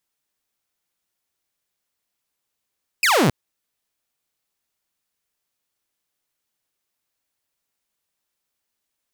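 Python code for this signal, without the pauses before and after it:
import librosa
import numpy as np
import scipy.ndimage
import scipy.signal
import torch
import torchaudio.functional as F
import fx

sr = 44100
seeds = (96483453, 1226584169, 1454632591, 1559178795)

y = fx.laser_zap(sr, level_db=-11.5, start_hz=2700.0, end_hz=110.0, length_s=0.27, wave='saw')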